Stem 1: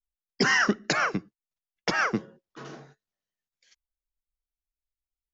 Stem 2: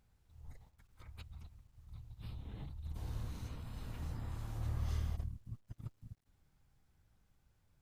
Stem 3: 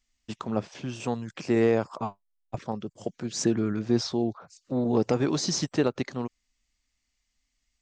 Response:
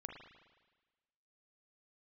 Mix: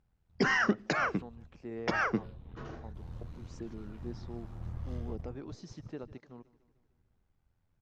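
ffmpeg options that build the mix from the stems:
-filter_complex "[0:a]volume=-3dB[a];[1:a]tremolo=f=84:d=0.621,volume=0.5dB[b];[2:a]adelay=150,volume=-18.5dB,asplit=2[c][d];[d]volume=-20.5dB,aecho=0:1:150|300|450|600|750|900|1050|1200|1350:1|0.58|0.336|0.195|0.113|0.0656|0.0381|0.0221|0.0128[e];[a][b][c][e]amix=inputs=4:normalize=0,lowpass=f=1.9k:p=1"

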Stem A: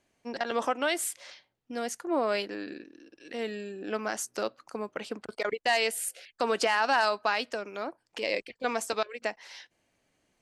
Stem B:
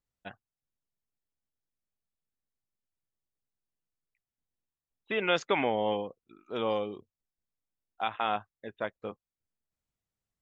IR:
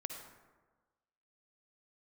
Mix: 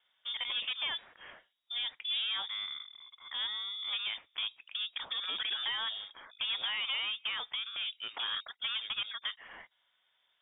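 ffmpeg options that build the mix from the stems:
-filter_complex "[0:a]highpass=f=150:w=0.5412,highpass=f=150:w=1.3066,volume=0dB,asplit=2[a][b];[1:a]acontrast=66,equalizer=f=1.6k:w=0.5:g=-8,volume=-10dB[c];[b]apad=whole_len=459182[d];[c][d]sidechaincompress=threshold=-30dB:ratio=8:attack=16:release=100[e];[a][e]amix=inputs=2:normalize=0,acrossover=split=260[f][g];[g]acompressor=threshold=-29dB:ratio=4[h];[f][h]amix=inputs=2:normalize=0,asoftclip=type=tanh:threshold=-29dB,lowpass=f=3.2k:t=q:w=0.5098,lowpass=f=3.2k:t=q:w=0.6013,lowpass=f=3.2k:t=q:w=0.9,lowpass=f=3.2k:t=q:w=2.563,afreqshift=-3800"

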